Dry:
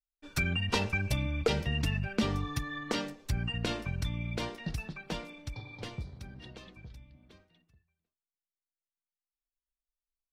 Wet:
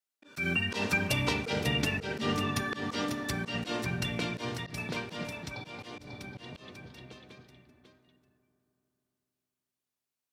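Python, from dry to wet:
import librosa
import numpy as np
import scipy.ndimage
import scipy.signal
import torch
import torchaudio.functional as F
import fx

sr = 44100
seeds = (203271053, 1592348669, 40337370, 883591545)

y = scipy.signal.sosfilt(scipy.signal.butter(2, 180.0, 'highpass', fs=sr, output='sos'), x)
y = y + 10.0 ** (-6.5 / 20.0) * np.pad(y, (int(544 * sr / 1000.0), 0))[:len(y)]
y = fx.vibrato(y, sr, rate_hz=1.4, depth_cents=14.0)
y = fx.rev_fdn(y, sr, rt60_s=3.4, lf_ratio=1.0, hf_ratio=0.35, size_ms=24.0, drr_db=10.0)
y = fx.auto_swell(y, sr, attack_ms=116.0)
y = y * 10.0 ** (5.0 / 20.0)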